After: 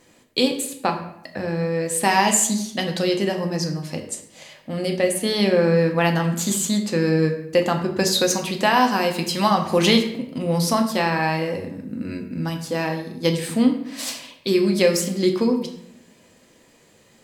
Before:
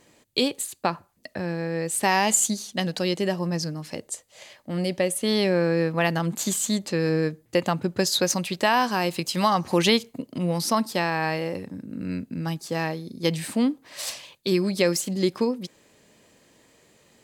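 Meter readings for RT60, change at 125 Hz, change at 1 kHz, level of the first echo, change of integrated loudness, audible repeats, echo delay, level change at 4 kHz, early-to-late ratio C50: 0.75 s, +3.5 dB, +3.5 dB, no echo audible, +3.5 dB, no echo audible, no echo audible, +3.0 dB, 8.5 dB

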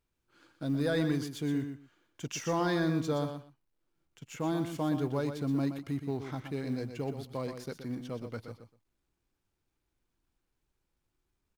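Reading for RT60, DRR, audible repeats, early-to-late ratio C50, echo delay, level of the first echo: no reverb audible, no reverb audible, 2, no reverb audible, 122 ms, −8.5 dB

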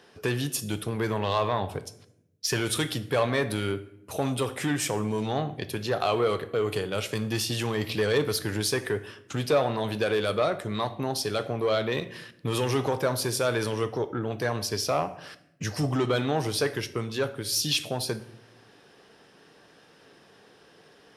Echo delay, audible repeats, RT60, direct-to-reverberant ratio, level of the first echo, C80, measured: no echo audible, no echo audible, 0.80 s, 11.0 dB, no echo audible, 18.0 dB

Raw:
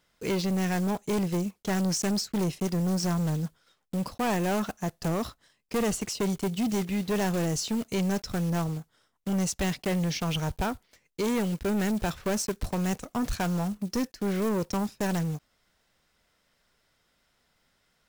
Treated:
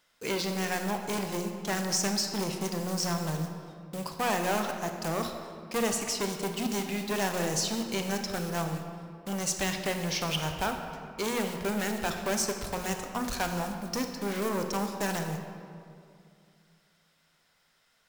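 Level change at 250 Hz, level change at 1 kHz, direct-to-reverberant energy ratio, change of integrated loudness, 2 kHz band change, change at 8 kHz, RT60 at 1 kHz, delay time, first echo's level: −5.5 dB, +1.5 dB, 5.0 dB, −2.0 dB, +2.5 dB, +2.5 dB, 2.3 s, no echo audible, no echo audible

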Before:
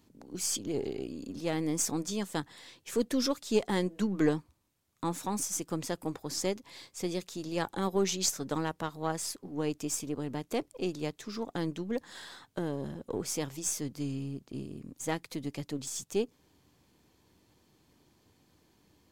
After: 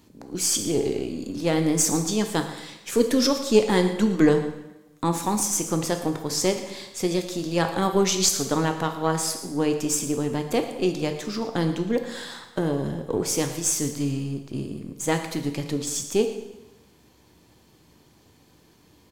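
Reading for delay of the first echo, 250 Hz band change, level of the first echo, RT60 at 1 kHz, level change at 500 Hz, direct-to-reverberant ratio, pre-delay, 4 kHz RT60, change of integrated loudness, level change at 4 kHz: 115 ms, +9.0 dB, −16.5 dB, 1.0 s, +10.0 dB, 5.5 dB, 7 ms, 0.95 s, +9.5 dB, +9.5 dB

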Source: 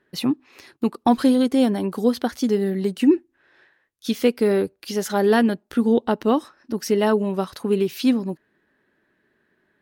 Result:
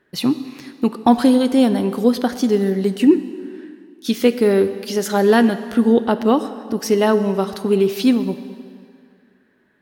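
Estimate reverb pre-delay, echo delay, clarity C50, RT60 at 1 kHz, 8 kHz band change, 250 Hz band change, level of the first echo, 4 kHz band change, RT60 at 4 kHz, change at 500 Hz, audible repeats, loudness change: 7 ms, no echo audible, 12.0 dB, 2.3 s, +4.0 dB, +4.0 dB, no echo audible, +4.0 dB, 1.9 s, +4.0 dB, no echo audible, +4.0 dB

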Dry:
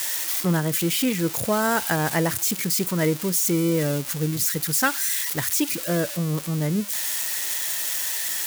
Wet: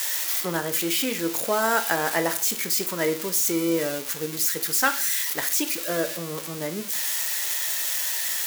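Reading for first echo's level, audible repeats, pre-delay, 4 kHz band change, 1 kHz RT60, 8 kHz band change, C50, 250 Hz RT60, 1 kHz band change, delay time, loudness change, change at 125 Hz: no echo audible, no echo audible, 15 ms, +0.5 dB, 0.45 s, −0.5 dB, 13.5 dB, 0.45 s, +0.5 dB, no echo audible, −1.0 dB, −13.0 dB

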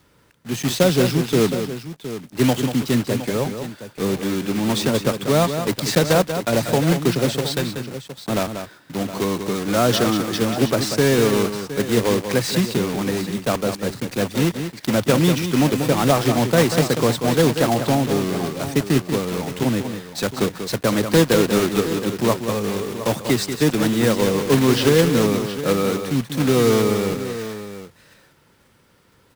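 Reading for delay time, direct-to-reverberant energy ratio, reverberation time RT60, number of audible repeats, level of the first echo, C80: 188 ms, no reverb audible, no reverb audible, 2, −8.5 dB, no reverb audible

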